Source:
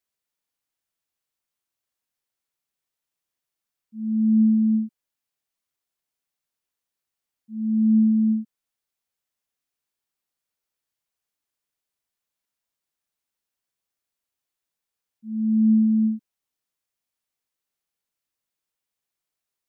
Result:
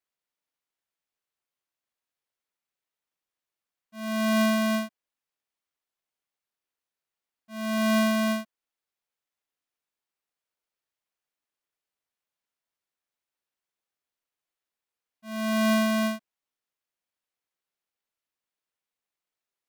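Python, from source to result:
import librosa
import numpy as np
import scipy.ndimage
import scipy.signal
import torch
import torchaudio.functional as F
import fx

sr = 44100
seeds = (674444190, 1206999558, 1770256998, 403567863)

y = fx.halfwave_hold(x, sr)
y = fx.bass_treble(y, sr, bass_db=-6, treble_db=-4)
y = F.gain(torch.from_numpy(y), -5.5).numpy()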